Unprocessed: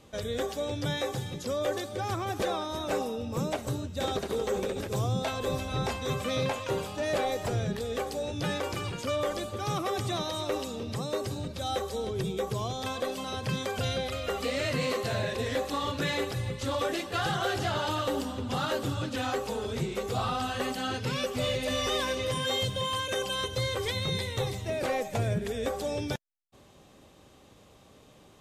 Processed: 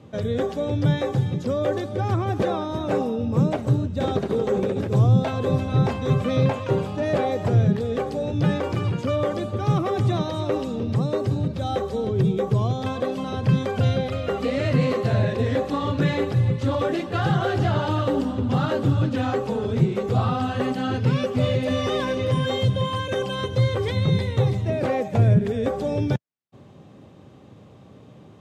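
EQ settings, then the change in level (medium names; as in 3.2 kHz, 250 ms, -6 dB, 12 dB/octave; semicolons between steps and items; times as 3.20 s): high-pass 110 Hz 24 dB/octave; RIAA curve playback; +4.0 dB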